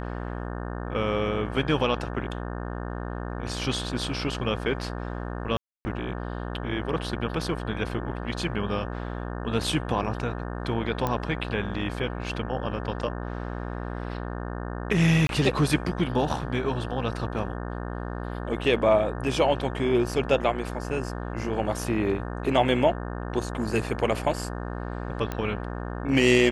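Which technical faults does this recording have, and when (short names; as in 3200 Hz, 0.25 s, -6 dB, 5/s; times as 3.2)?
buzz 60 Hz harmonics 30 -33 dBFS
5.57–5.85 gap 0.28 s
11.07 pop -13 dBFS
15.27–15.29 gap 22 ms
25.32 pop -16 dBFS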